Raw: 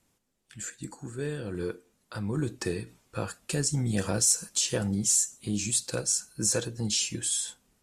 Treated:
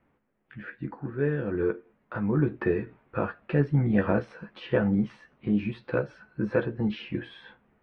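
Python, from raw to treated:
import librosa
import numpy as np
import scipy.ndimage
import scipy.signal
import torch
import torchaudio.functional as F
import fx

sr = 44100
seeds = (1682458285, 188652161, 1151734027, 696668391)

y = scipy.signal.sosfilt(scipy.signal.cheby2(4, 60, 6700.0, 'lowpass', fs=sr, output='sos'), x)
y = fx.low_shelf(y, sr, hz=100.0, db=-6.5)
y = fx.doubler(y, sr, ms=14.0, db=-7.0)
y = F.gain(torch.from_numpy(y), 5.5).numpy()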